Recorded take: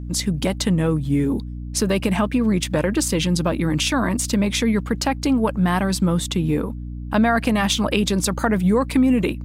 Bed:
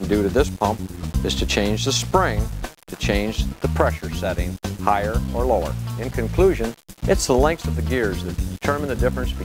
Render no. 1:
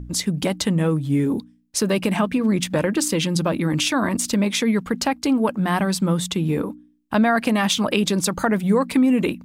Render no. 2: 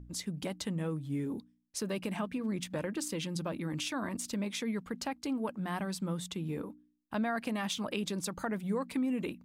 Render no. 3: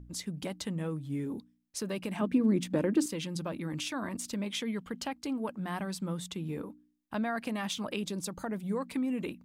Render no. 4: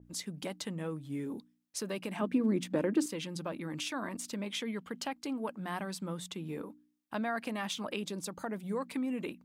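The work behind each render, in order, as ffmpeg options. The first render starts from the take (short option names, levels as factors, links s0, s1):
-af "bandreject=f=60:t=h:w=4,bandreject=f=120:t=h:w=4,bandreject=f=180:t=h:w=4,bandreject=f=240:t=h:w=4,bandreject=f=300:t=h:w=4"
-af "volume=0.178"
-filter_complex "[0:a]asettb=1/sr,asplit=3[s0][s1][s2];[s0]atrim=end=2.214[s3];[s1]atrim=start=2.21:end=3.06,asetpts=PTS-STARTPTS,afade=t=in:d=0.004:c=qsin,afade=t=out:st=0.846:d=0.004:c=qsin,equalizer=f=300:t=o:w=1.6:g=11.5[s4];[s2]atrim=start=3.056[s5];[s3][s4]acrossfade=d=0.004:c1=hsin:c2=qsin[s6];[s6][s5]acrossfade=d=0.004:c1=qsin:c2=hsin,asettb=1/sr,asplit=3[s7][s8][s9];[s7]atrim=end=4.464[s10];[s8]atrim=start=4.46:end=5.12,asetpts=PTS-STARTPTS,afade=t=in:d=0.004:c=qsin,afade=t=out:st=0.656:d=0.004:c=qsin,equalizer=f=3100:w=7.3:g=10[s11];[s9]atrim=start=5.116[s12];[s10][s11]acrossfade=d=0.004:c1=hsin:c2=qsin[s13];[s13][s12]acrossfade=d=0.004:c1=qsin:c2=hsin,asettb=1/sr,asplit=3[s14][s15][s16];[s14]atrim=end=8.034[s17];[s15]atrim=start=8.03:end=8.71,asetpts=PTS-STARTPTS,afade=t=in:d=0.004:c=qsin,afade=t=out:st=0.676:d=0.004:c=qsin,equalizer=f=1700:w=0.79:g=-5[s18];[s16]atrim=start=8.706[s19];[s17][s18]acrossfade=d=0.004:c1=hsin:c2=qsin[s20];[s20][s19]acrossfade=d=0.004:c1=qsin:c2=hsin"
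-af "highpass=f=240:p=1,adynamicequalizer=threshold=0.00316:dfrequency=3100:dqfactor=0.7:tfrequency=3100:tqfactor=0.7:attack=5:release=100:ratio=0.375:range=1.5:mode=cutabove:tftype=highshelf"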